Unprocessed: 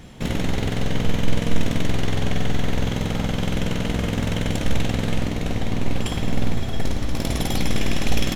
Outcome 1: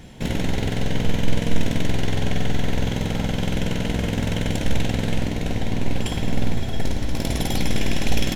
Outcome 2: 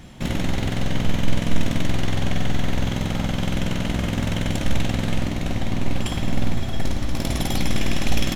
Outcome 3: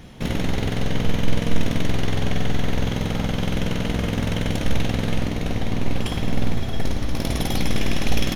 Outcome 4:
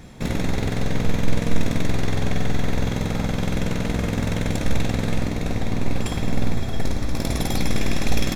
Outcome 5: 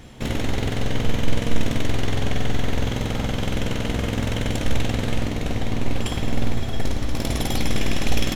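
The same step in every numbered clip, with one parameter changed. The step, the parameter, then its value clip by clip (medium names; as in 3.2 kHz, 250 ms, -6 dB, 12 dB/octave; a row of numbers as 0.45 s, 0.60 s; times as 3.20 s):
band-stop, frequency: 1.2 kHz, 450 Hz, 7.6 kHz, 3 kHz, 180 Hz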